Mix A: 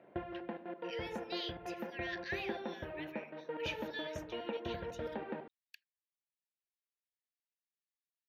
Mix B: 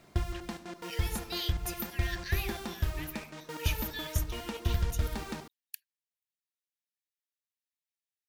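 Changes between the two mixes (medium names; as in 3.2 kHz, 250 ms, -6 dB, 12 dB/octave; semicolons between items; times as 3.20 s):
background: remove cabinet simulation 260–2500 Hz, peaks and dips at 530 Hz +9 dB, 1.2 kHz -9 dB, 2.2 kHz -5 dB; master: remove distance through air 230 m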